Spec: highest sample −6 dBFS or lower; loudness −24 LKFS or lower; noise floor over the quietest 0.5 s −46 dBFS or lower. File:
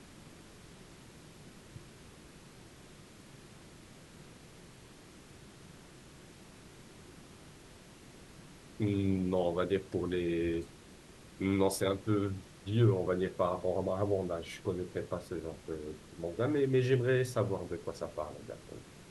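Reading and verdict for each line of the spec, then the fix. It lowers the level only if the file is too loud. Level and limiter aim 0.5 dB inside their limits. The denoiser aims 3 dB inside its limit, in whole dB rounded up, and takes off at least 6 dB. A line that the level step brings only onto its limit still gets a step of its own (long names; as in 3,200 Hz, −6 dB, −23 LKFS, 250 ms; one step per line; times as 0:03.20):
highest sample −16.0 dBFS: in spec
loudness −33.5 LKFS: in spec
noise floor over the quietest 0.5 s −55 dBFS: in spec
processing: no processing needed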